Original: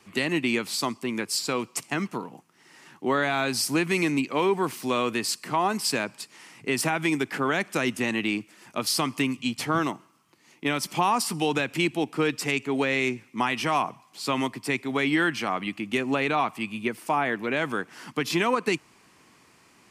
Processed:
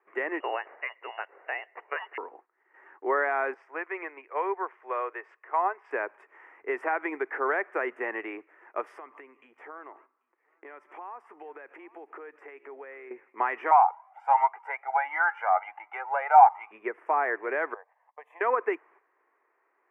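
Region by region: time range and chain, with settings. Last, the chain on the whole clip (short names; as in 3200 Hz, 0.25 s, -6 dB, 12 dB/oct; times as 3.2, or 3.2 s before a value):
0.4–2.18 HPF 190 Hz + inverted band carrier 3100 Hz
3.54–5.91 three-band isolator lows -23 dB, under 400 Hz, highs -24 dB, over 5900 Hz + upward expander, over -37 dBFS
8.98–13.11 compressor 12:1, threshold -36 dBFS + echo 0.789 s -20.5 dB
13.71–16.71 resonant high-pass 850 Hz, resonance Q 7.7 + comb 1.4 ms, depth 66% + cascading flanger rising 1.4 Hz
17.74–18.41 HPF 530 Hz 24 dB/oct + bell 2300 Hz -15 dB 2.3 oct + fixed phaser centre 1400 Hz, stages 6
whole clip: gate -52 dBFS, range -10 dB; elliptic band-pass 390–1900 Hz, stop band 40 dB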